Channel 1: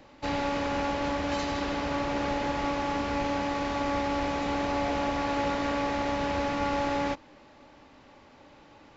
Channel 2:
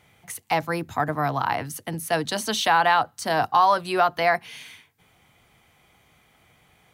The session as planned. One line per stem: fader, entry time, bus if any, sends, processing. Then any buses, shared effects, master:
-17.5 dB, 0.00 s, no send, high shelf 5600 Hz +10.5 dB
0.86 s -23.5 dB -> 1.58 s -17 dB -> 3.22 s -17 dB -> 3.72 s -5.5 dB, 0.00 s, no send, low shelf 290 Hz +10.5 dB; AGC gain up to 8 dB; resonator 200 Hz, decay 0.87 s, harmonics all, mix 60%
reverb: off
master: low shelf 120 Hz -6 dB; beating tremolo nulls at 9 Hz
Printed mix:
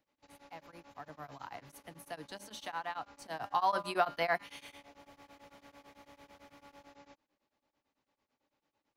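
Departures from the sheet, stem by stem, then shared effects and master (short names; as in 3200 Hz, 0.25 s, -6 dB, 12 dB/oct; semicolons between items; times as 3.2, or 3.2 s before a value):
stem 1 -17.5 dB -> -26.5 dB; stem 2: missing low shelf 290 Hz +10.5 dB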